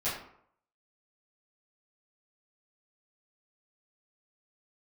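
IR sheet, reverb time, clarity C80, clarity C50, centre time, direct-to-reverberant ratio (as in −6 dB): 0.65 s, 7.5 dB, 4.0 dB, 44 ms, −12.5 dB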